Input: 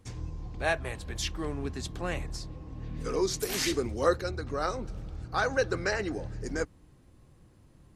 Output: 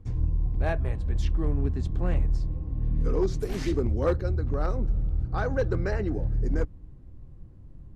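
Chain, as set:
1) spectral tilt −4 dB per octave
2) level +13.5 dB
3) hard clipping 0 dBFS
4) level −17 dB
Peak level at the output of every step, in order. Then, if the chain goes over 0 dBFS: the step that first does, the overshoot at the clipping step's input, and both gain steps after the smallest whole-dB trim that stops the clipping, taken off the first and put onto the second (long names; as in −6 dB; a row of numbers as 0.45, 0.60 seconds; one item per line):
−8.5, +5.0, 0.0, −17.0 dBFS
step 2, 5.0 dB
step 2 +8.5 dB, step 4 −12 dB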